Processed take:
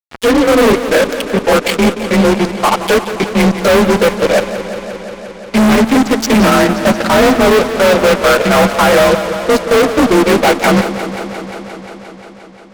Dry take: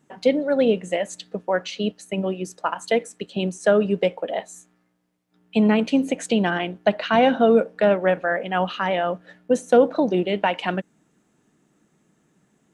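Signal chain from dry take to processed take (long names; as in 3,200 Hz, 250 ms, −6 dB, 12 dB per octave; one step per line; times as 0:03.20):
partials spread apart or drawn together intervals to 90%
0:06.47–0:07.69: Chebyshev low-pass filter 2,100 Hz, order 10
transient designer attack −5 dB, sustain −9 dB
fuzz pedal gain 38 dB, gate −39 dBFS
feedback echo with a swinging delay time 176 ms, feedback 79%, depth 81 cents, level −12 dB
level +6 dB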